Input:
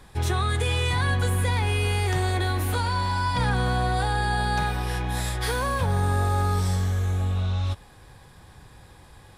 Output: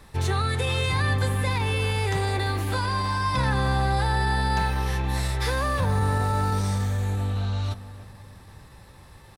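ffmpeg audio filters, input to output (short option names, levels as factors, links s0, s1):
-filter_complex "[0:a]asplit=2[s0][s1];[s1]adelay=309,lowpass=f=1100:p=1,volume=0.251,asplit=2[s2][s3];[s3]adelay=309,lowpass=f=1100:p=1,volume=0.5,asplit=2[s4][s5];[s5]adelay=309,lowpass=f=1100:p=1,volume=0.5,asplit=2[s6][s7];[s7]adelay=309,lowpass=f=1100:p=1,volume=0.5,asplit=2[s8][s9];[s9]adelay=309,lowpass=f=1100:p=1,volume=0.5[s10];[s0][s2][s4][s6][s8][s10]amix=inputs=6:normalize=0,acrossover=split=8600[s11][s12];[s12]acompressor=threshold=0.00398:ratio=4:attack=1:release=60[s13];[s11][s13]amix=inputs=2:normalize=0,asetrate=46722,aresample=44100,atempo=0.943874"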